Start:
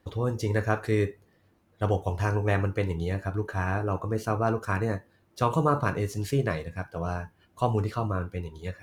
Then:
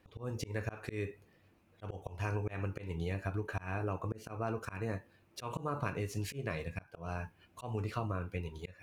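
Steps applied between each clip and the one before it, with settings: bell 2500 Hz +9 dB 0.33 oct; auto swell 0.285 s; compressor 5:1, threshold -30 dBFS, peak gain reduction 9.5 dB; gain -2.5 dB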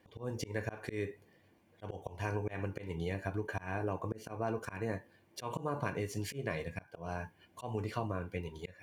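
notch comb 1300 Hz; gain +2 dB

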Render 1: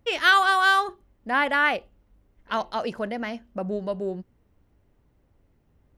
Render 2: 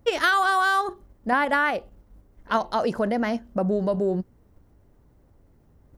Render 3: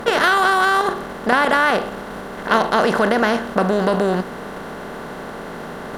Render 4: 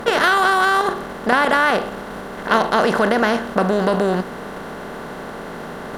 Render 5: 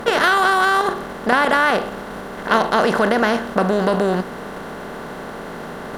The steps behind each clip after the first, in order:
in parallel at +2.5 dB: level quantiser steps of 12 dB; on the sum: bell 2700 Hz -8 dB 1.2 oct; compressor 6:1, threshold -21 dBFS, peak gain reduction 9 dB; gain +3 dB
per-bin compression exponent 0.4; gain +1.5 dB
nothing audible
crackle 550/s -46 dBFS

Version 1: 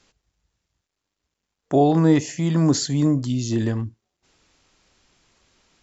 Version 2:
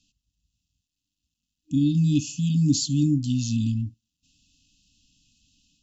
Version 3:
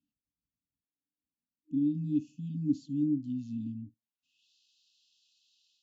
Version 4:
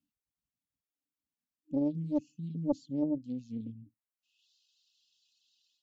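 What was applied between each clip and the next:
FFT band-reject 310–2500 Hz; AGC gain up to 5 dB; gain -5.5 dB
band-pass sweep 390 Hz -> 4000 Hz, 3.88–4.49; gain -1 dB
reverb removal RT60 1 s; Doppler distortion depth 0.65 ms

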